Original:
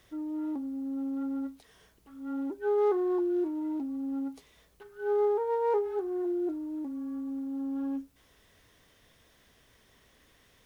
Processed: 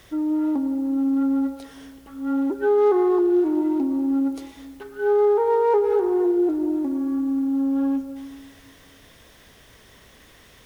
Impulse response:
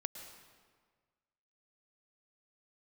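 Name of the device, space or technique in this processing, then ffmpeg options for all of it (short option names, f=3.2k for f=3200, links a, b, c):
ducked reverb: -filter_complex "[0:a]asplit=3[a][b][c];[1:a]atrim=start_sample=2205[d];[b][d]afir=irnorm=-1:irlink=0[e];[c]apad=whole_len=469820[f];[e][f]sidechaincompress=threshold=-30dB:ratio=8:attack=10:release=108,volume=7dB[g];[a][g]amix=inputs=2:normalize=0,volume=3dB"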